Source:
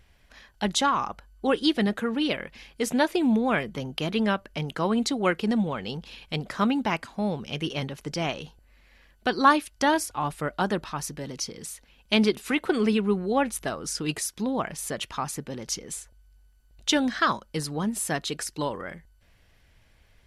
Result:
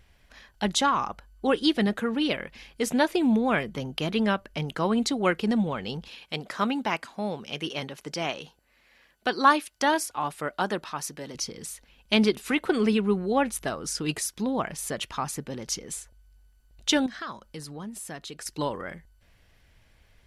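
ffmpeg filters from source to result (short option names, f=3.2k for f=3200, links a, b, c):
-filter_complex "[0:a]asettb=1/sr,asplit=3[a][b][c];[a]atrim=end=6.084[d];[b]atrim=start=6.08:end=11.35,asetpts=PTS-STARTPTS,afade=t=in:d=0.004:c=qsin,afade=t=out:st=5.266:d=0.004:c=qsin,highpass=f=310:p=1[e];[c]atrim=start=11.346[f];[d][e]acrossfade=d=0.004:c1=hsin:c2=qsin[g];[g][f]acrossfade=d=0.004:c1=qsin:c2=hsin,asettb=1/sr,asplit=3[h][i][j];[h]atrim=end=17.064[k];[i]atrim=start=17.06:end=18.46,asetpts=PTS-STARTPTS,afade=t=in:d=0.004:c=qsin,afade=t=out:st=1.396:d=0.004:c=qsin,acompressor=threshold=-43dB:ratio=2:attack=3.2:release=140:knee=1:detection=peak[l];[j]atrim=start=18.456[m];[k][l]acrossfade=d=0.004:c1=hsin:c2=qsin[n];[n][m]acrossfade=d=0.004:c1=qsin:c2=hsin"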